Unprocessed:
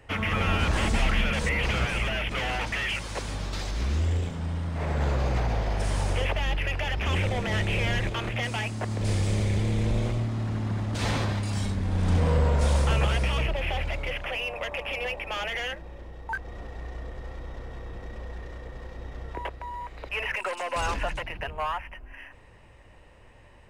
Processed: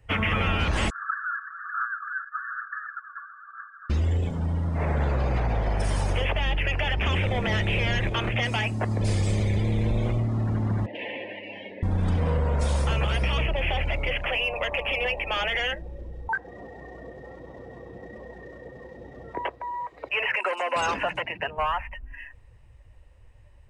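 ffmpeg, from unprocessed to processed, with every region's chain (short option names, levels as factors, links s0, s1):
-filter_complex "[0:a]asettb=1/sr,asplit=3[s0][s1][s2];[s0]atrim=end=0.904[s3];[s1]atrim=start=0.9:end=3.9,asetpts=PTS-STARTPTS,afade=t=in:d=0.004:c=qsin,afade=t=out:st=2.996:d=0.004:c=qsin,asuperpass=centerf=1400:order=20:qfactor=2.3,aphaser=in_gain=1:out_gain=1:delay=3.6:decay=0.36:speed=1.1:type=sinusoidal[s4];[s2]atrim=start=3.896[s5];[s3][s4]acrossfade=d=0.004:c1=hsin:c2=qsin[s6];[s6][s5]acrossfade=d=0.004:c1=qsin:c2=hsin,asettb=1/sr,asplit=3[s7][s8][s9];[s7]atrim=end=10.864[s10];[s8]atrim=start=10.86:end=11.83,asetpts=PTS-STARTPTS,afade=t=in:d=0.004:c=qsin,afade=t=out:st=0.966:d=0.004:c=qsin,acrossover=split=480|1900[s11][s12][s13];[s11]acompressor=threshold=0.00794:ratio=4[s14];[s12]acompressor=threshold=0.00891:ratio=4[s15];[s13]acompressor=threshold=0.00794:ratio=4[s16];[s14][s15][s16]amix=inputs=3:normalize=0,asuperstop=centerf=1300:order=4:qfactor=1.8,highpass=290,equalizer=f=310:t=q:w=4:g=6,equalizer=f=520:t=q:w=4:g=7,equalizer=f=780:t=q:w=4:g=-5,equalizer=f=1200:t=q:w=4:g=-7,equalizer=f=1900:t=q:w=4:g=4,equalizer=f=2800:t=q:w=4:g=7,lowpass=f=3000:w=0.5412,lowpass=f=3000:w=1.3066[s17];[s9]atrim=start=11.826[s18];[s10][s17]acrossfade=d=0.004:c1=hsin:c2=qsin[s19];[s19][s18]acrossfade=d=0.004:c1=qsin:c2=hsin,asettb=1/sr,asplit=3[s20][s21][s22];[s20]atrim=end=16.284[s23];[s21]atrim=start=16.28:end=21.58,asetpts=PTS-STARTPTS,afade=t=in:d=0.004:c=qsin,afade=t=out:st=5.296:d=0.004:c=qsin,highpass=150,highshelf=f=7700:g=-5.5[s24];[s22]atrim=start=21.576[s25];[s23][s24]acrossfade=d=0.004:c1=hsin:c2=qsin[s26];[s26][s25]acrossfade=d=0.004:c1=qsin:c2=hsin,afftdn=nr=16:nf=-42,highshelf=f=5800:g=8,acompressor=threshold=0.0562:ratio=6,volume=1.68"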